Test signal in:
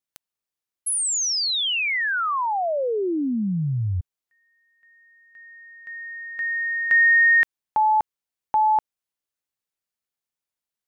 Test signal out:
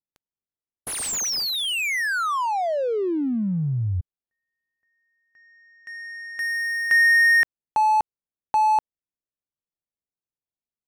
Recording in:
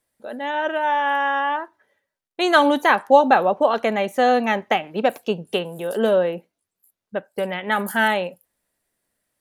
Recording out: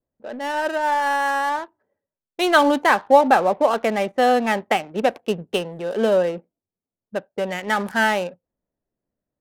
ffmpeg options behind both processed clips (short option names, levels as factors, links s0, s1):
-af "adynamicequalizer=threshold=0.0126:dfrequency=3800:dqfactor=1.3:tfrequency=3800:tqfactor=1.3:attack=5:release=100:ratio=0.3:range=2:mode=cutabove:tftype=bell,adynamicsmooth=sensitivity=7.5:basefreq=640"